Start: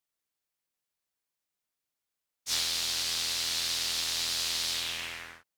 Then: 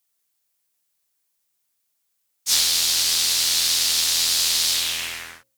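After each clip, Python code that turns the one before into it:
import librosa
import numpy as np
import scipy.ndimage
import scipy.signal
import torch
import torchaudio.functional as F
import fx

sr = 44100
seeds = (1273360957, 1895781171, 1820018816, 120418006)

y = fx.high_shelf(x, sr, hz=4900.0, db=11.0)
y = fx.hum_notches(y, sr, base_hz=60, count=9)
y = y * 10.0 ** (5.5 / 20.0)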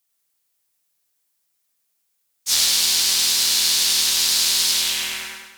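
y = fx.echo_feedback(x, sr, ms=101, feedback_pct=50, wet_db=-4)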